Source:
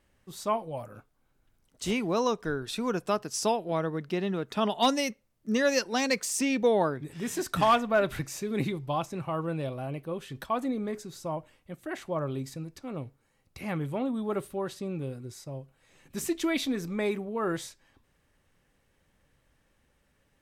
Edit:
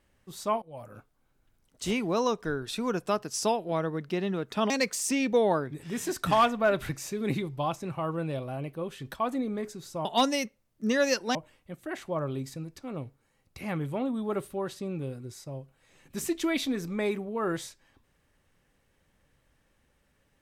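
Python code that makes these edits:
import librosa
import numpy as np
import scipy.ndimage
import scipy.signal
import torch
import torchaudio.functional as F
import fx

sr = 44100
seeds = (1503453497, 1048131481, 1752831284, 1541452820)

y = fx.edit(x, sr, fx.fade_in_from(start_s=0.62, length_s=0.33, floor_db=-20.5),
    fx.move(start_s=4.7, length_s=1.3, to_s=11.35), tone=tone)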